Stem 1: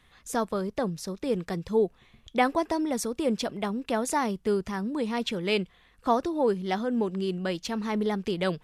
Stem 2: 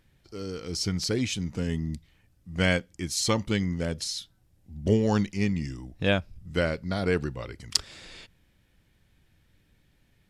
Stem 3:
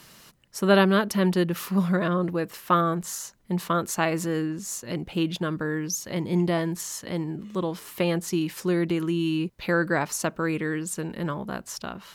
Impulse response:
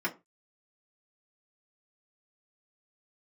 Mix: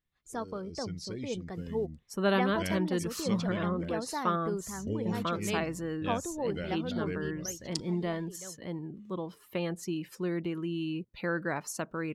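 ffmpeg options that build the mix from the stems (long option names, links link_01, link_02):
-filter_complex "[0:a]agate=range=-10dB:threshold=-56dB:ratio=16:detection=peak,volume=-9dB,afade=type=out:start_time=7.1:duration=0.63:silence=0.251189[link_01];[1:a]equalizer=frequency=900:width_type=o:width=0.77:gain=-8.5,volume=-12dB[link_02];[2:a]adelay=1550,volume=-8.5dB[link_03];[link_01][link_02][link_03]amix=inputs=3:normalize=0,afftdn=noise_reduction=13:noise_floor=-51"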